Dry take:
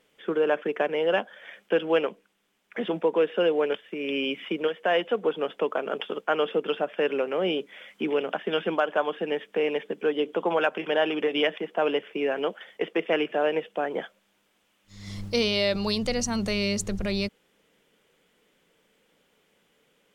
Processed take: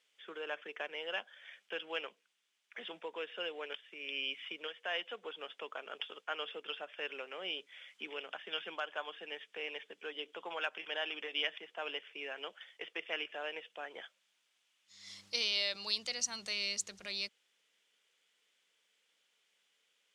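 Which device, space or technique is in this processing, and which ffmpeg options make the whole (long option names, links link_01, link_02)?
piezo pickup straight into a mixer: -af "lowpass=5300,aderivative,volume=2.5dB"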